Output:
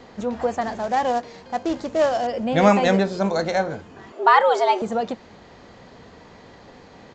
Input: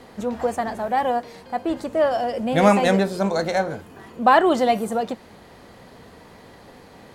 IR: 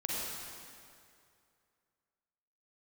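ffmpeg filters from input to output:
-filter_complex "[0:a]asettb=1/sr,asplit=3[a][b][c];[a]atrim=end=0.614[d];[b]atrim=start=0.61:end=2.27,asetpts=PTS-STARTPTS,afade=t=in:d=0.004:c=qsin,afade=t=out:st=1.656:d=0.004:c=qsin,acrusher=bits=4:mode=log:mix=0:aa=0.000001[e];[c]atrim=start=2.266[f];[d][e]acrossfade=d=0.004:c1=hsin:c2=qsin[g];[g][f]acrossfade=d=0.004:c1=qsin:c2=hsin,aresample=16000,aresample=44100,asettb=1/sr,asplit=3[h][i][j];[h]atrim=end=4.124[k];[i]atrim=start=4.12:end=4.82,asetpts=PTS-STARTPTS,afade=t=in:d=0.004:c=qsin,afade=t=out:st=0.696:d=0.004:c=qsin,afreqshift=170[l];[j]atrim=start=4.816[m];[k][l]acrossfade=d=0.004:c1=hsin:c2=qsin[n];[n][m]acrossfade=d=0.004:c1=qsin:c2=hsin"

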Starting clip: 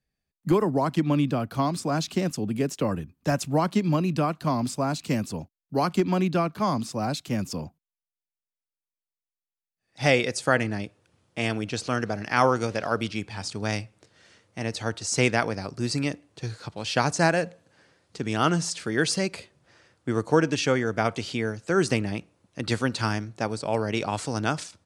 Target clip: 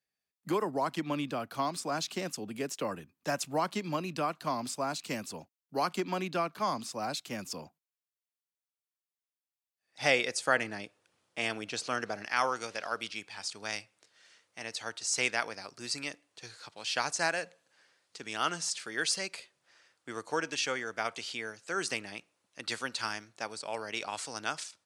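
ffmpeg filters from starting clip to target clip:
-af "asetnsamples=n=441:p=0,asendcmd='12.27 highpass f 1500',highpass=f=710:p=1,volume=-2.5dB"

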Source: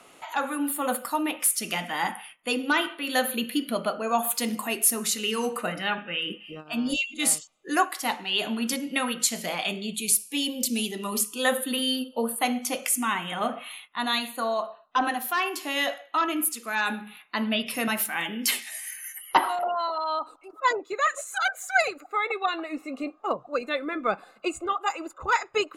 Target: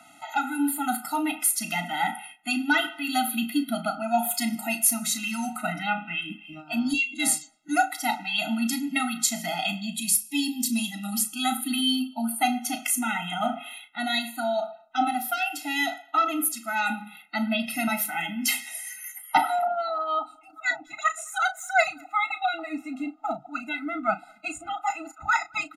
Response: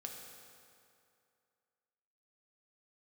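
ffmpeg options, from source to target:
-filter_complex "[0:a]aresample=32000,aresample=44100,lowshelf=f=86:g=-10.5,asplit=2[a][b];[b]adelay=35,volume=-11dB[c];[a][c]amix=inputs=2:normalize=0,asplit=2[d][e];[e]adelay=210,highpass=300,lowpass=3.4k,asoftclip=type=hard:threshold=-16.5dB,volume=-30dB[f];[d][f]amix=inputs=2:normalize=0,afftfilt=real='re*eq(mod(floor(b*sr/1024/310),2),0)':imag='im*eq(mod(floor(b*sr/1024/310),2),0)':win_size=1024:overlap=0.75,volume=3dB"

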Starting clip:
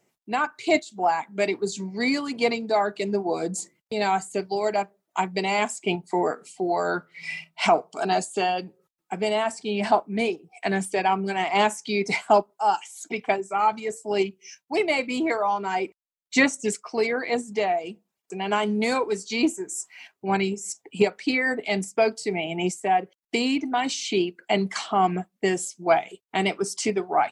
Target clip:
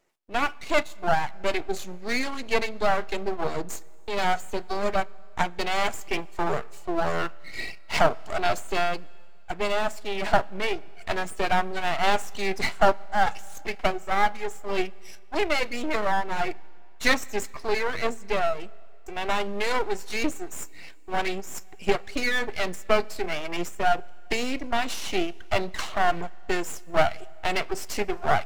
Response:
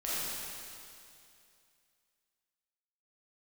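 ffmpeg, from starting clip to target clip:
-filter_complex "[0:a]bass=f=250:g=-13,treble=f=4k:g=-5,asetrate=42336,aresample=44100,aeval=exprs='max(val(0),0)':c=same,asplit=2[a][b];[1:a]atrim=start_sample=2205[c];[b][c]afir=irnorm=-1:irlink=0,volume=-30dB[d];[a][d]amix=inputs=2:normalize=0,volume=3.5dB"

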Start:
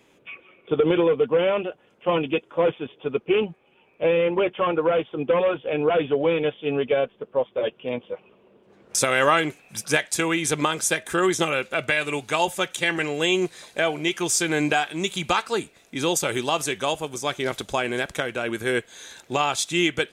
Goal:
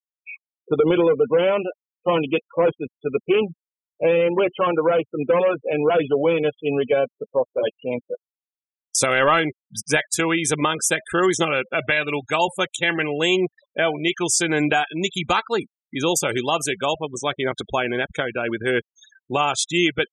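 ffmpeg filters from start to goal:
-af "acontrast=78,afftfilt=real='re*gte(hypot(re,im),0.0631)':imag='im*gte(hypot(re,im),0.0631)':win_size=1024:overlap=0.75,afftdn=nr=14:nf=-38,volume=-4dB"

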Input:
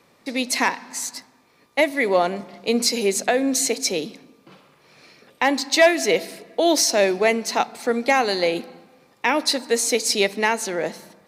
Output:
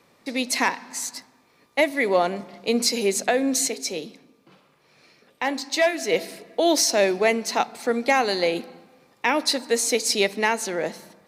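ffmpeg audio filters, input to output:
-filter_complex "[0:a]asplit=3[a][b][c];[a]afade=t=out:st=3.67:d=0.02[d];[b]flanger=delay=4.2:depth=4.7:regen=-81:speed=1.7:shape=sinusoidal,afade=t=in:st=3.67:d=0.02,afade=t=out:st=6.11:d=0.02[e];[c]afade=t=in:st=6.11:d=0.02[f];[d][e][f]amix=inputs=3:normalize=0,volume=-1.5dB"

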